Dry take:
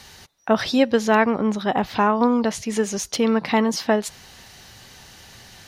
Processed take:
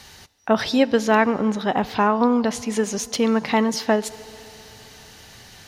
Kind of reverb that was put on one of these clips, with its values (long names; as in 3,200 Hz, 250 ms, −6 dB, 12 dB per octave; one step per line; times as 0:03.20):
feedback delay network reverb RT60 3.4 s, high-frequency decay 0.95×, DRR 18.5 dB